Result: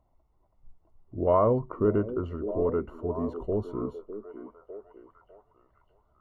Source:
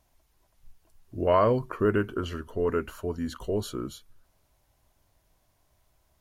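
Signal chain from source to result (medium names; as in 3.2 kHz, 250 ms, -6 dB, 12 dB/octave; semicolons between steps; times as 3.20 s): Savitzky-Golay filter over 65 samples; repeats whose band climbs or falls 603 ms, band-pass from 320 Hz, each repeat 0.7 oct, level -9 dB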